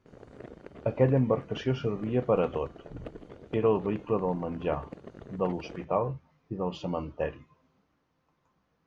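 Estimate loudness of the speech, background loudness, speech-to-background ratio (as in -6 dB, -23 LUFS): -30.0 LUFS, -47.0 LUFS, 17.0 dB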